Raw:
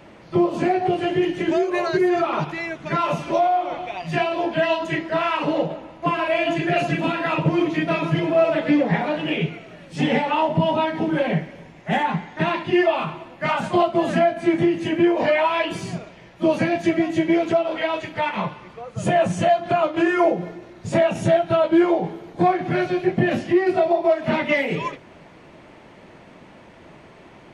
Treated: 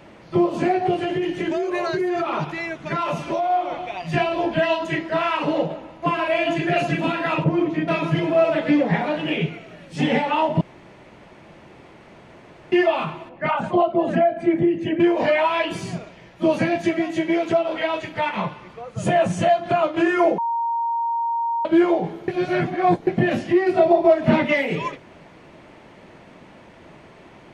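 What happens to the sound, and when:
0.98–3.50 s: compression, threshold -19 dBFS
4.14–4.59 s: bass shelf 120 Hz +11 dB
7.44–7.88 s: treble shelf 2.1 kHz -11.5 dB
10.61–12.72 s: room tone
13.29–15.00 s: resonances exaggerated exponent 1.5
16.88–17.50 s: bass shelf 210 Hz -9 dB
20.38–21.65 s: bleep 930 Hz -20 dBFS
22.28–23.07 s: reverse
23.79–24.47 s: bass shelf 490 Hz +8 dB

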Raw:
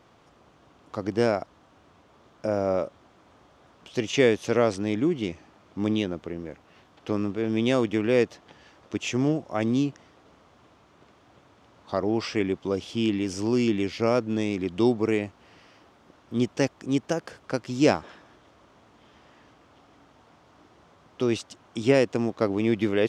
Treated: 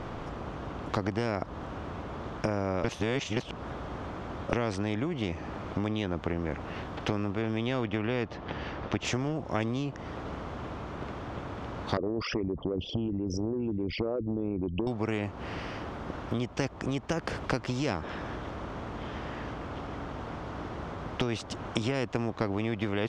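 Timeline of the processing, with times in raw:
2.84–4.53 s: reverse
7.66–9.05 s: low-pass 4.6 kHz
11.97–14.87 s: resonances exaggerated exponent 3
whole clip: tilt EQ -4.5 dB/octave; compression 6:1, threshold -28 dBFS; spectrum-flattening compressor 2:1; trim +3.5 dB

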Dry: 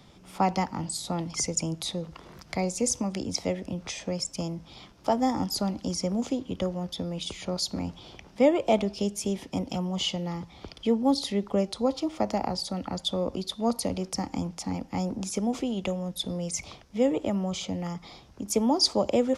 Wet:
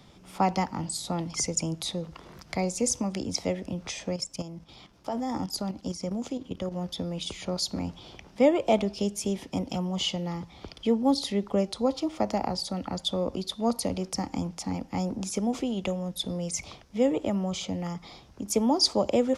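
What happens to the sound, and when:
4.16–6.72 s: level held to a coarse grid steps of 10 dB

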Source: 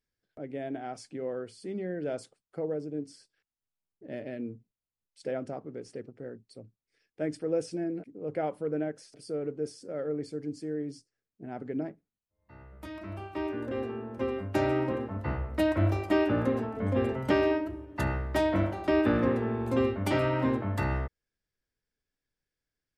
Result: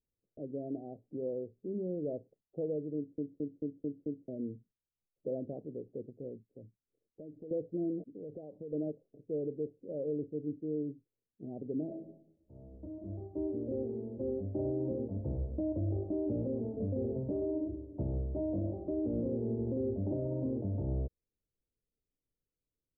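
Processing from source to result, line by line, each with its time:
2.96 s: stutter in place 0.22 s, 6 plays
6.45–7.51 s: compression, threshold -42 dBFS
8.03–8.73 s: compression 8:1, threshold -38 dBFS
11.84–12.72 s: reverb throw, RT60 0.82 s, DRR -0.5 dB
whole clip: steep low-pass 590 Hz 36 dB/octave; peak limiter -25.5 dBFS; trim -1.5 dB

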